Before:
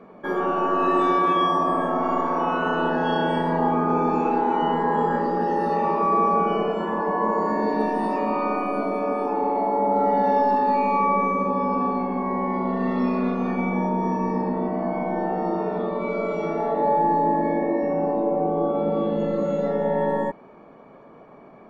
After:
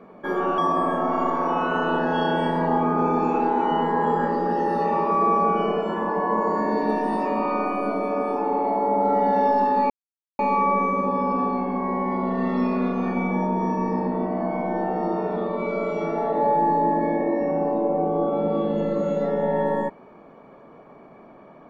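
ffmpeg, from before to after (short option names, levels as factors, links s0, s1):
-filter_complex "[0:a]asplit=3[s0][s1][s2];[s0]atrim=end=0.582[s3];[s1]atrim=start=1.488:end=10.81,asetpts=PTS-STARTPTS,afade=t=out:st=9.318:d=0.004:c=hsin,apad=pad_dur=0.49[s4];[s2]atrim=start=10.81,asetpts=PTS-STARTPTS,afade=t=in:d=0.004:c=hsin[s5];[s4][s5]concat=n=2:v=0:a=1[s6];[s3][s6]acrossfade=d=0.004:c1=hsin:c2=hsin"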